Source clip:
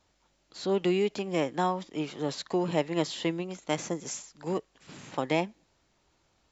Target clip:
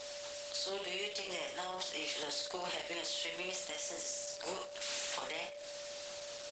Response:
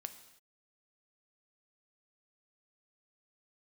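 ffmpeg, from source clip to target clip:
-filter_complex "[0:a]aderivative,acompressor=threshold=-50dB:ratio=3,aecho=1:1:38|55|65:0.422|0.211|0.15,acrossover=split=180[a][b];[b]acompressor=threshold=-55dB:ratio=10[c];[a][c]amix=inputs=2:normalize=0,aeval=exprs='0.0224*sin(PI/2*5.01*val(0)/0.0224)':c=same,alimiter=level_in=19.5dB:limit=-24dB:level=0:latency=1:release=399,volume=-19.5dB,highpass=f=110:w=0.5412,highpass=f=110:w=1.3066,bass=f=250:g=-13,treble=f=4k:g=3,acrusher=bits=9:mix=0:aa=0.000001,asplit=2[d][e];[1:a]atrim=start_sample=2205,lowpass=5.6k[f];[e][f]afir=irnorm=-1:irlink=0,volume=10.5dB[g];[d][g]amix=inputs=2:normalize=0,aeval=exprs='val(0)+0.00355*sin(2*PI*580*n/s)':c=same,volume=4dB" -ar 48000 -c:a libopus -b:a 12k

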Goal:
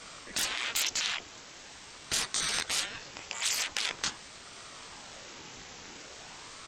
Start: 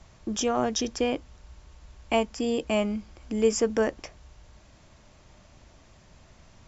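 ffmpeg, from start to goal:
-af "flanger=delay=18:depth=6.3:speed=2.1,aeval=exprs='0.224*sin(PI/2*3.55*val(0)/0.224)':c=same,afftfilt=real='re*lt(hypot(re,im),0.0891)':imag='im*lt(hypot(re,im),0.0891)':win_size=1024:overlap=0.75,tiltshelf=f=920:g=-7,aresample=32000,aresample=44100,aeval=exprs='val(0)*sin(2*PI*730*n/s+730*0.8/0.44*sin(2*PI*0.44*n/s))':c=same"

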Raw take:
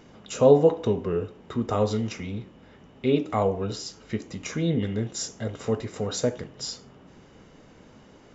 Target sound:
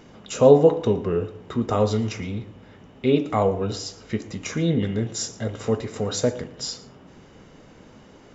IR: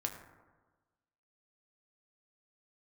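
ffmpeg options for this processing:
-filter_complex "[0:a]asplit=2[a][b];[1:a]atrim=start_sample=2205,adelay=114[c];[b][c]afir=irnorm=-1:irlink=0,volume=-19dB[d];[a][d]amix=inputs=2:normalize=0,volume=3dB"

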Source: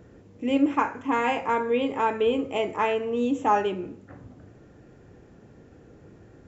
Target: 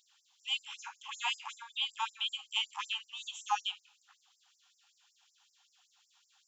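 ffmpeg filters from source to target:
-af "highshelf=f=2.5k:t=q:w=3:g=9,afftfilt=real='re*gte(b*sr/1024,720*pow(5000/720,0.5+0.5*sin(2*PI*5.3*pts/sr)))':imag='im*gte(b*sr/1024,720*pow(5000/720,0.5+0.5*sin(2*PI*5.3*pts/sr)))':win_size=1024:overlap=0.75,volume=-6dB"

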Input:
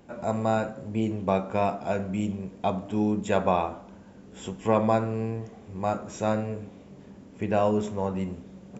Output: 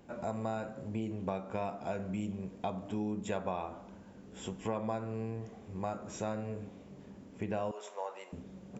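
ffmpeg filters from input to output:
-filter_complex "[0:a]asettb=1/sr,asplit=3[a][b][c];[a]atrim=end=7.714[d];[b]atrim=start=7.71:end=8.33,asetpts=PTS-STARTPTS,afade=t=in:d=0.004:c=qsin,afade=t=out:st=0.616:d=0.004:c=qsin,highpass=f=560:w=0.5412,highpass=f=560:w=1.3066[e];[c]atrim=start=8.326[f];[d][e]acrossfade=d=0.004:c1=hsin:c2=qsin[g];[g][f]acrossfade=d=0.004:c1=qsin:c2=hsin,acompressor=threshold=-30dB:ratio=3,volume=-4dB"

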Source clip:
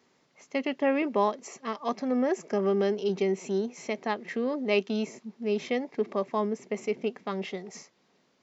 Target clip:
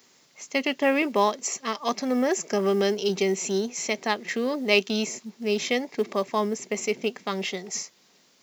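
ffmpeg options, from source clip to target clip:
-af "crystalizer=i=5:c=0,acrusher=bits=8:mode=log:mix=0:aa=0.000001,volume=2dB"

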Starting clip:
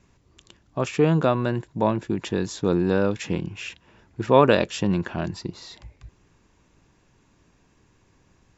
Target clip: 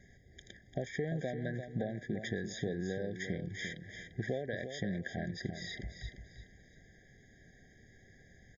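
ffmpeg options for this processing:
-af "superequalizer=6b=0.562:11b=3.16,acompressor=threshold=-33dB:ratio=12,asuperstop=centerf=1300:order=4:qfactor=2.4,aecho=1:1:345|690|1035:0.376|0.105|0.0295,afftfilt=real='re*eq(mod(floor(b*sr/1024/780),2),0)':imag='im*eq(mod(floor(b*sr/1024/780),2),0)':win_size=1024:overlap=0.75"

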